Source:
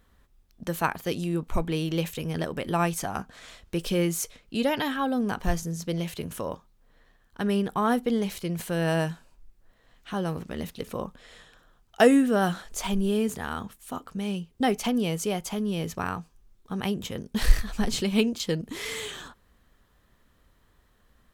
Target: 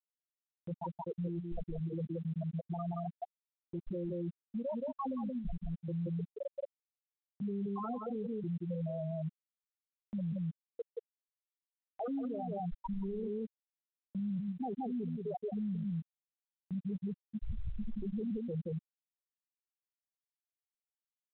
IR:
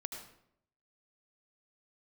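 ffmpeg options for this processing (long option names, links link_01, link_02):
-filter_complex "[0:a]aeval=exprs='0.178*(abs(mod(val(0)/0.178+3,4)-2)-1)':channel_layout=same,equalizer=frequency=290:width_type=o:width=0.28:gain=-4,asoftclip=type=hard:threshold=-21dB,adynamicequalizer=threshold=0.0126:dfrequency=220:dqfactor=2:tfrequency=220:tqfactor=2:attack=5:release=100:ratio=0.375:range=2.5:mode=cutabove:tftype=bell,afftfilt=real='re*gte(hypot(re,im),0.282)':imag='im*gte(hypot(re,im),0.282)':win_size=1024:overlap=0.75,asplit=2[link_01][link_02];[link_02]adelay=174.9,volume=-9dB,highshelf=frequency=4000:gain=-3.94[link_03];[link_01][link_03]amix=inputs=2:normalize=0,areverse,acompressor=threshold=-40dB:ratio=16,areverse,alimiter=level_in=22.5dB:limit=-24dB:level=0:latency=1:release=126,volume=-22.5dB,acompressor=mode=upward:threshold=-58dB:ratio=2.5,volume=14.5dB" -ar 8000 -c:a pcm_mulaw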